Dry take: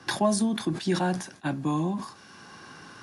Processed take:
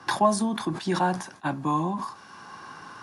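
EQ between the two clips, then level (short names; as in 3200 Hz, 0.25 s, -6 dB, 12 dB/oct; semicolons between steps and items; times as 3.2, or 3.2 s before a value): bell 1000 Hz +10 dB 0.97 oct; -1.5 dB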